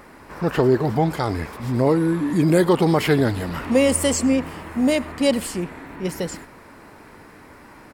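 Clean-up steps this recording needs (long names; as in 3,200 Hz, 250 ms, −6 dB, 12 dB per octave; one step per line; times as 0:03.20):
echo removal 100 ms −23.5 dB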